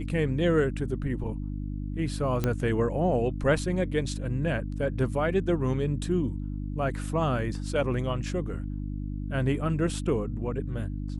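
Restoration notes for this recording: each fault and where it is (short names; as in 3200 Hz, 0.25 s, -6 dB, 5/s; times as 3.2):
hum 50 Hz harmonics 6 -33 dBFS
2.44 pop -13 dBFS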